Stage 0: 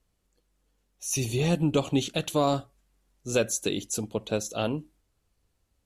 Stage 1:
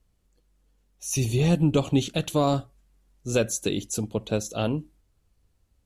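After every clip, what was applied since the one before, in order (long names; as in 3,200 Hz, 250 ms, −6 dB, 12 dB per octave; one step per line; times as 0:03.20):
low-shelf EQ 210 Hz +7.5 dB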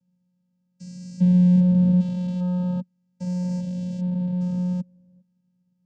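spectrum averaged block by block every 400 ms
bass and treble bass +12 dB, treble +8 dB
channel vocoder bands 8, square 180 Hz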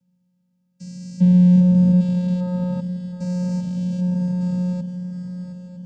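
feedback echo with a long and a short gap by turns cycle 958 ms, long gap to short 3 to 1, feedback 47%, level −11 dB
level +3.5 dB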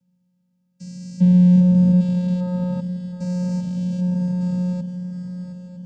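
no processing that can be heard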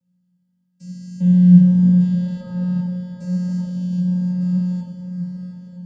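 delay that plays each chunk backwards 358 ms, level −12 dB
convolution reverb RT60 0.85 s, pre-delay 10 ms, DRR 1 dB
flanger 0.82 Hz, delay 1.5 ms, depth 7.6 ms, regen +81%
level −1.5 dB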